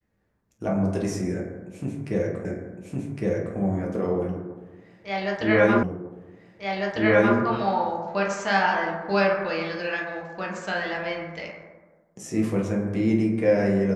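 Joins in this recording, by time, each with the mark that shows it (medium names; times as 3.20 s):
2.45 s: repeat of the last 1.11 s
5.83 s: repeat of the last 1.55 s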